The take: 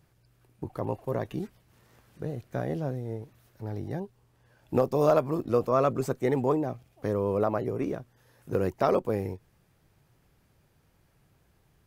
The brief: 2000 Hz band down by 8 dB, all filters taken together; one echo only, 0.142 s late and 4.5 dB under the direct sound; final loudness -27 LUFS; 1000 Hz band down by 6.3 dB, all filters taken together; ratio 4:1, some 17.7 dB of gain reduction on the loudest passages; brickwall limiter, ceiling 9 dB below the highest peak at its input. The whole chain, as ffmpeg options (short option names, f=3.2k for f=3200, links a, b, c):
-af "equalizer=f=1k:t=o:g=-7,equalizer=f=2k:t=o:g=-8,acompressor=threshold=-43dB:ratio=4,alimiter=level_in=12.5dB:limit=-24dB:level=0:latency=1,volume=-12.5dB,aecho=1:1:142:0.596,volume=20.5dB"